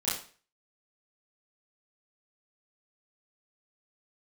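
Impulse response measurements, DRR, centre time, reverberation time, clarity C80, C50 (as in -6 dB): -10.5 dB, 46 ms, 0.40 s, 9.0 dB, 4.0 dB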